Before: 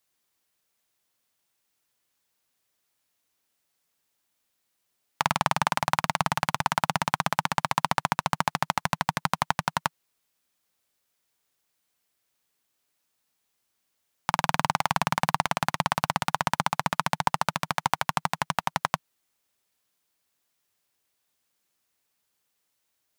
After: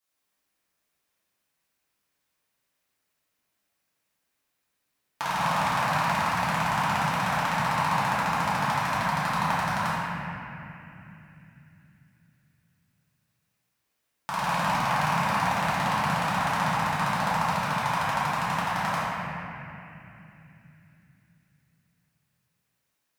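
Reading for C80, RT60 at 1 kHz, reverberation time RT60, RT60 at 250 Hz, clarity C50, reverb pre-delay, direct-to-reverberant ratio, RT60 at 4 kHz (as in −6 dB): −3.0 dB, 2.8 s, 3.0 s, 4.7 s, −5.0 dB, 3 ms, −12.5 dB, 2.8 s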